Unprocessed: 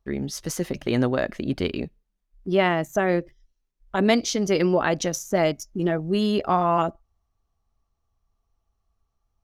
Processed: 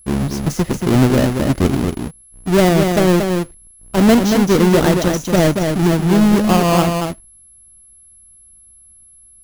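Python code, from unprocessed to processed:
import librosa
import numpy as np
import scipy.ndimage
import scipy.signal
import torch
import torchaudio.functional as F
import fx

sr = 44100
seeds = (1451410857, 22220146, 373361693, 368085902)

p1 = fx.halfwave_hold(x, sr)
p2 = fx.low_shelf(p1, sr, hz=430.0, db=9.5)
p3 = p2 + fx.echo_single(p2, sr, ms=231, db=-5.0, dry=0)
p4 = fx.quant_dither(p3, sr, seeds[0], bits=12, dither='triangular')
p5 = p4 + 10.0 ** (-42.0 / 20.0) * np.sin(2.0 * np.pi * 11000.0 * np.arange(len(p4)) / sr)
y = p5 * librosa.db_to_amplitude(-1.5)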